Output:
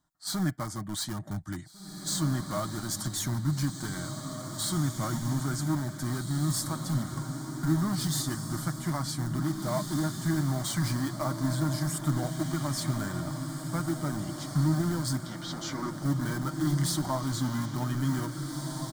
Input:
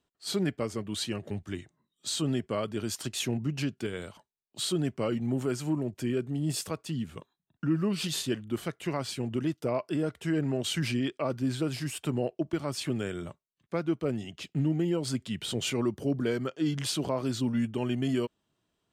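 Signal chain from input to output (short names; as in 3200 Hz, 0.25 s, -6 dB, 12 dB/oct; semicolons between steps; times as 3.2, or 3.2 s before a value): in parallel at -10 dB: wrapped overs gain 28 dB; 15.21–16.03 on the sum: elliptic band-pass 260–5800 Hz; fixed phaser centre 1100 Hz, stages 4; comb 6.5 ms, depth 41%; diffused feedback echo 1.897 s, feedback 42%, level -6 dB; gain +2.5 dB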